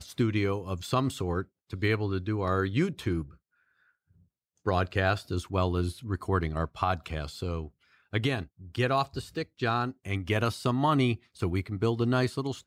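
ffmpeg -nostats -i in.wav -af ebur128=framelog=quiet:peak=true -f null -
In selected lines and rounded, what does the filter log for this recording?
Integrated loudness:
  I:         -29.8 LUFS
  Threshold: -40.3 LUFS
Loudness range:
  LRA:         3.0 LU
  Threshold: -50.8 LUFS
  LRA low:   -32.0 LUFS
  LRA high:  -29.0 LUFS
True peak:
  Peak:      -11.9 dBFS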